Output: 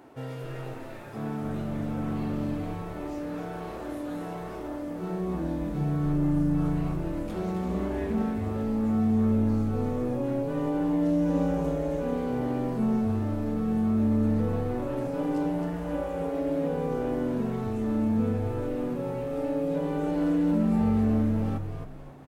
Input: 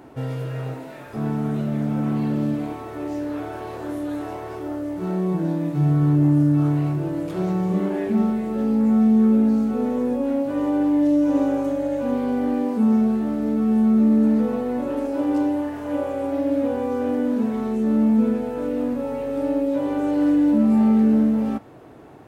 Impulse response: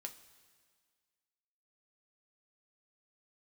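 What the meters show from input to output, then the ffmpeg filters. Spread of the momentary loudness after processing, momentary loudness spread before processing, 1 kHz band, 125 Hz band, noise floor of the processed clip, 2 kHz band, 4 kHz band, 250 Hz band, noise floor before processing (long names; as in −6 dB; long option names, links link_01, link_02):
11 LU, 12 LU, −5.0 dB, −4.5 dB, −38 dBFS, −4.5 dB, can't be measured, −8.0 dB, −37 dBFS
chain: -filter_complex "[0:a]lowshelf=frequency=210:gain=-7.5,asplit=2[link_01][link_02];[link_02]asplit=4[link_03][link_04][link_05][link_06];[link_03]adelay=266,afreqshift=-120,volume=-5.5dB[link_07];[link_04]adelay=532,afreqshift=-240,volume=-14.1dB[link_08];[link_05]adelay=798,afreqshift=-360,volume=-22.8dB[link_09];[link_06]adelay=1064,afreqshift=-480,volume=-31.4dB[link_10];[link_07][link_08][link_09][link_10]amix=inputs=4:normalize=0[link_11];[link_01][link_11]amix=inputs=2:normalize=0,volume=-5dB"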